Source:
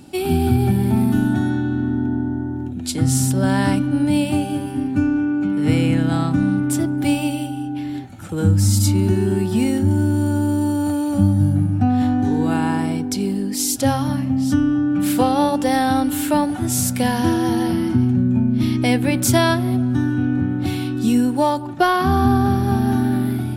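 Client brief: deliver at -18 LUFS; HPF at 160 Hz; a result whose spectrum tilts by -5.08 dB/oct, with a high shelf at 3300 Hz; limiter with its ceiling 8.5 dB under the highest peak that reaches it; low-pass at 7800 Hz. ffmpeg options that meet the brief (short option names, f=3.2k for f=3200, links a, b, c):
-af "highpass=160,lowpass=7.8k,highshelf=f=3.3k:g=5.5,volume=4dB,alimiter=limit=-9dB:level=0:latency=1"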